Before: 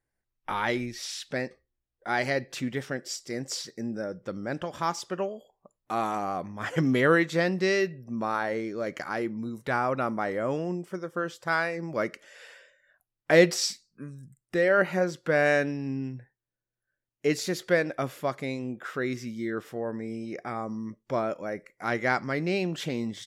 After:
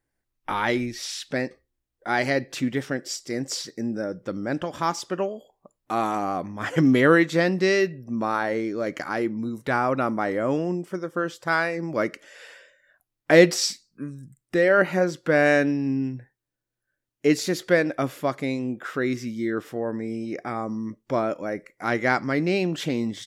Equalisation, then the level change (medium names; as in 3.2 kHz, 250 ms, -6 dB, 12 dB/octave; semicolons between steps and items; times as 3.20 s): peaking EQ 290 Hz +5.5 dB 0.39 oct; +3.5 dB